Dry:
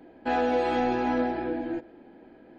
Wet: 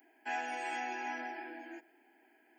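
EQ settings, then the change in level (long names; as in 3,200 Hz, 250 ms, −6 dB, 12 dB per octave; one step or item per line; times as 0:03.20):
high-pass filter 190 Hz 24 dB per octave
first difference
phaser with its sweep stopped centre 790 Hz, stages 8
+9.0 dB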